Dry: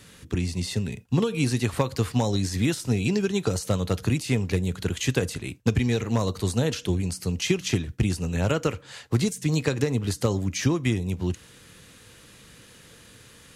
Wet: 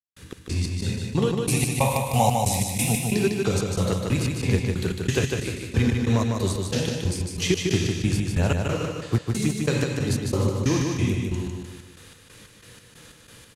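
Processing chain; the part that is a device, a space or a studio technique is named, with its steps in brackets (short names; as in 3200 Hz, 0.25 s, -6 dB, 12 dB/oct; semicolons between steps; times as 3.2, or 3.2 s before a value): 1.46–3.02 EQ curve 220 Hz 0 dB, 340 Hz -12 dB, 750 Hz +13 dB, 1600 Hz -14 dB, 2300 Hz +8 dB, 4600 Hz -2 dB, 11000 Hz +14 dB; non-linear reverb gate 0.23 s flat, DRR 0.5 dB; trance gate with a delay (step gate "..xx..xx" 183 bpm -60 dB; feedback echo 0.152 s, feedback 42%, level -4 dB)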